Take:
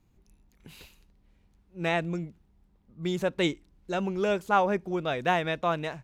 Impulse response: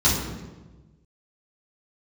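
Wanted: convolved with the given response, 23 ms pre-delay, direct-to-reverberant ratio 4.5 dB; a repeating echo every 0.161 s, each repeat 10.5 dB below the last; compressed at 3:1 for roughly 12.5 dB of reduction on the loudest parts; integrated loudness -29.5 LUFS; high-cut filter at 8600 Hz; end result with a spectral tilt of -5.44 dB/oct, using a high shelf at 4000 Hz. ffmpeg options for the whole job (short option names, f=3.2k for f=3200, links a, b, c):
-filter_complex "[0:a]lowpass=8.6k,highshelf=f=4k:g=6,acompressor=threshold=-36dB:ratio=3,aecho=1:1:161|322|483:0.299|0.0896|0.0269,asplit=2[a][b];[1:a]atrim=start_sample=2205,adelay=23[c];[b][c]afir=irnorm=-1:irlink=0,volume=-21dB[d];[a][d]amix=inputs=2:normalize=0,volume=5dB"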